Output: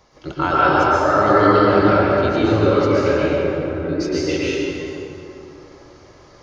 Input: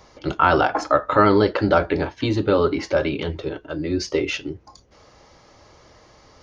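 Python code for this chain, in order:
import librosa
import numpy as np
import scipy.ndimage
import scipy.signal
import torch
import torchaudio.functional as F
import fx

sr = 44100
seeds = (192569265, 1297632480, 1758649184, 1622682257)

y = fx.gaussian_blur(x, sr, sigma=3.9, at=(3.16, 3.89))
y = fx.rev_plate(y, sr, seeds[0], rt60_s=3.1, hf_ratio=0.55, predelay_ms=105, drr_db=-8.5)
y = F.gain(torch.from_numpy(y), -5.5).numpy()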